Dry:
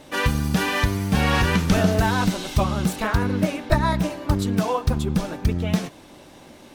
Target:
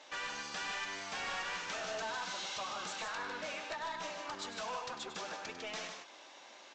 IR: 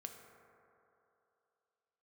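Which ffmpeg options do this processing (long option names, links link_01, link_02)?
-af "highpass=850,acompressor=threshold=-29dB:ratio=4,aresample=16000,asoftclip=type=tanh:threshold=-32dB,aresample=44100,aecho=1:1:99.13|151.6:0.316|0.501,volume=-4.5dB"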